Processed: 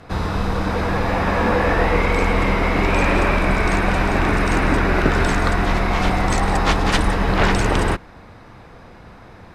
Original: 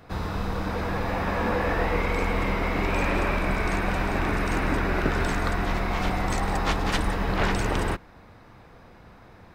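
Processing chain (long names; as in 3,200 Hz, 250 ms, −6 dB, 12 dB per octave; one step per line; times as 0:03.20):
low-pass filter 12,000 Hz 24 dB per octave
level +7.5 dB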